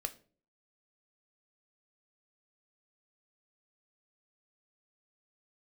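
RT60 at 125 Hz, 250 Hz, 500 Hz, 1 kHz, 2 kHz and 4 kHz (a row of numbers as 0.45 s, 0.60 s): 0.60 s, 0.55 s, 0.50 s, 0.35 s, 0.35 s, 0.30 s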